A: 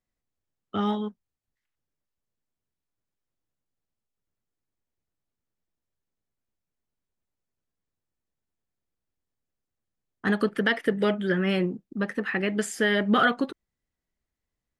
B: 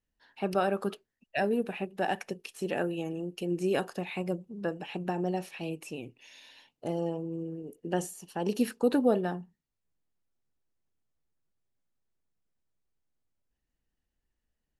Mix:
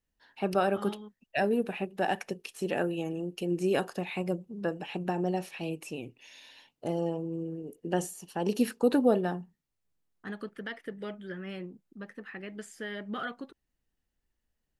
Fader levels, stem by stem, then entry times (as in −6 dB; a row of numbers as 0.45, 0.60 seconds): −15.0, +1.0 decibels; 0.00, 0.00 seconds